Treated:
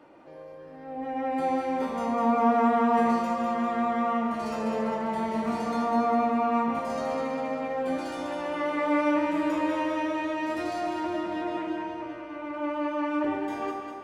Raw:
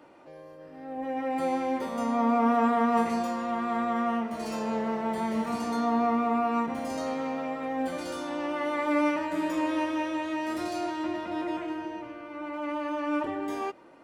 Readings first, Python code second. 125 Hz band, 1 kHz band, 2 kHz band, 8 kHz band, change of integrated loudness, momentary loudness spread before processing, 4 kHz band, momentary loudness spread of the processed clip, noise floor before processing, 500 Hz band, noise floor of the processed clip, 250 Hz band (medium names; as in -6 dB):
+1.5 dB, +2.0 dB, +1.0 dB, -3.5 dB, +1.5 dB, 11 LU, -0.5 dB, 11 LU, -47 dBFS, +2.5 dB, -44 dBFS, +1.0 dB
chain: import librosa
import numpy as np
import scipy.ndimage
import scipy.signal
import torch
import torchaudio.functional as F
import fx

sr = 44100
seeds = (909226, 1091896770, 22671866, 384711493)

p1 = fx.high_shelf(x, sr, hz=5600.0, db=-7.5)
y = p1 + fx.echo_alternate(p1, sr, ms=100, hz=1000.0, feedback_pct=75, wet_db=-3, dry=0)